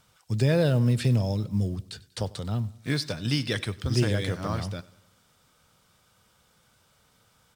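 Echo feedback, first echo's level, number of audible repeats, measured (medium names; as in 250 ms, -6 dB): 50%, -21.0 dB, 3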